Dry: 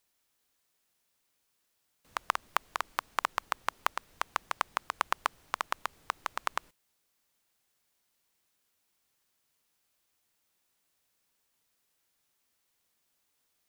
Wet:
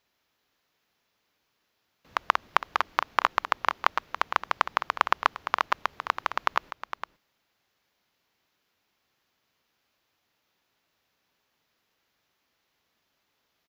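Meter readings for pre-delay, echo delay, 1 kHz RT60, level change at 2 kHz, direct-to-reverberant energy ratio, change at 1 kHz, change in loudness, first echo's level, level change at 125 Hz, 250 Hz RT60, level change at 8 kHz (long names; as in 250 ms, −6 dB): no reverb audible, 460 ms, no reverb audible, +7.5 dB, no reverb audible, +7.5 dB, +7.5 dB, −10.5 dB, can't be measured, no reverb audible, −3.0 dB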